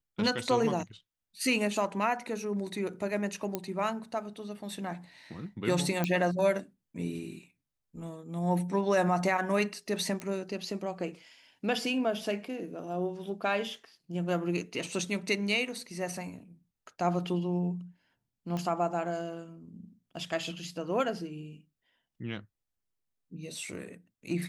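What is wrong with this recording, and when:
3.55 pop -16 dBFS
6.04 pop -15 dBFS
10.2 pop -23 dBFS
18.57 pop -23 dBFS

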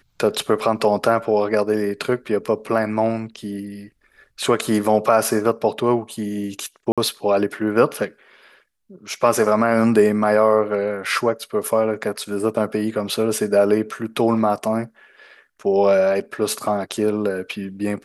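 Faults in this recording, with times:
6.92–6.98 gap 56 ms

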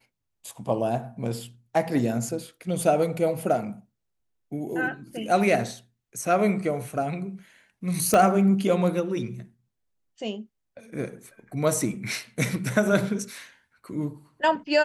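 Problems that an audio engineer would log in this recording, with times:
8.14 pop -9 dBFS

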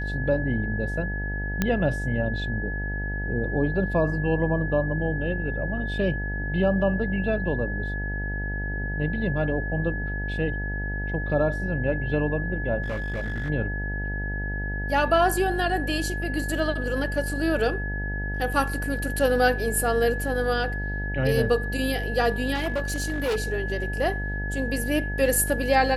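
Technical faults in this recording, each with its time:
buzz 50 Hz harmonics 18 -30 dBFS
tone 1700 Hz -32 dBFS
1.62 pop -9 dBFS
12.82–13.5 clipped -25 dBFS
22.54–23.37 clipped -22 dBFS

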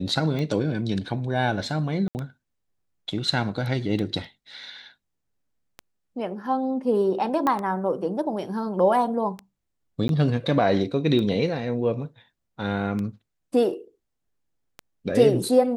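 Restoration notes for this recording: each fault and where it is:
tick 33 1/3 rpm -19 dBFS
2.08–2.15 gap 69 ms
7.47 pop -12 dBFS
10.08–10.09 gap 12 ms

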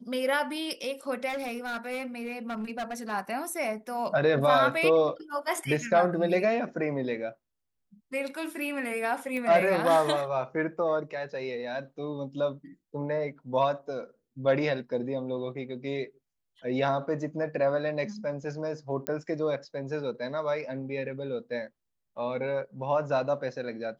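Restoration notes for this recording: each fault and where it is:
1.28–3.13 clipped -29.5 dBFS
9.37 pop -22 dBFS
19.07 pop -14 dBFS

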